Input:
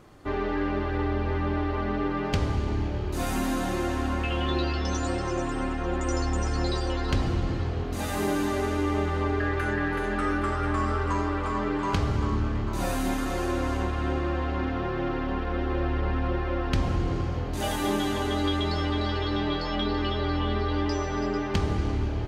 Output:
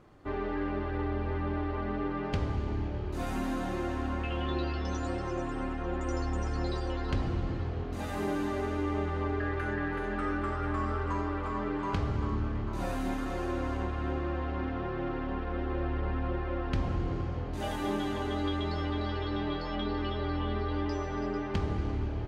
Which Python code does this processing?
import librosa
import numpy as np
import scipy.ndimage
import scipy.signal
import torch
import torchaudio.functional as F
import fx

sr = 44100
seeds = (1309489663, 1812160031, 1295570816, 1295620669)

y = fx.high_shelf(x, sr, hz=4400.0, db=-10.5)
y = y * 10.0 ** (-5.0 / 20.0)